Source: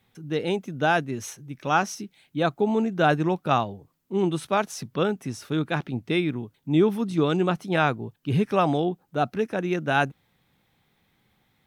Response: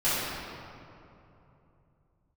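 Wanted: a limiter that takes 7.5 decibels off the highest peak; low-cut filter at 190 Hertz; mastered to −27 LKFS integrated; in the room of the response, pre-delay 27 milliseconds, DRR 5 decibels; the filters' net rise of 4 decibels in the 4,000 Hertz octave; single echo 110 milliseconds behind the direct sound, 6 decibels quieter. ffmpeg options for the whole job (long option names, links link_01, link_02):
-filter_complex "[0:a]highpass=190,equalizer=frequency=4000:width_type=o:gain=5,alimiter=limit=-13dB:level=0:latency=1,aecho=1:1:110:0.501,asplit=2[link_01][link_02];[1:a]atrim=start_sample=2205,adelay=27[link_03];[link_02][link_03]afir=irnorm=-1:irlink=0,volume=-19dB[link_04];[link_01][link_04]amix=inputs=2:normalize=0,volume=-1.5dB"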